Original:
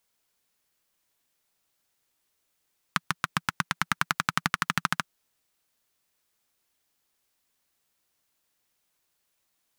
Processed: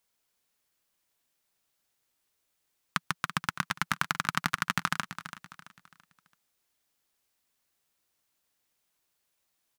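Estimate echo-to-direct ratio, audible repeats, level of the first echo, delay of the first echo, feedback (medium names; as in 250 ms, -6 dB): -11.5 dB, 3, -12.0 dB, 334 ms, 37%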